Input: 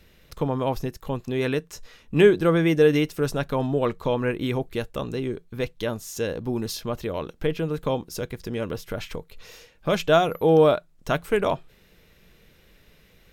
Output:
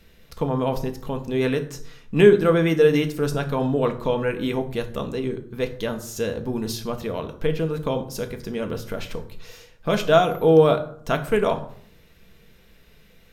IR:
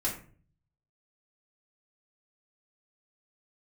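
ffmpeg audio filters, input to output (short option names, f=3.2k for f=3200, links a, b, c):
-filter_complex "[0:a]asplit=2[a][b];[1:a]atrim=start_sample=2205,asetrate=29988,aresample=44100[c];[b][c]afir=irnorm=-1:irlink=0,volume=-11.5dB[d];[a][d]amix=inputs=2:normalize=0,volume=-2dB"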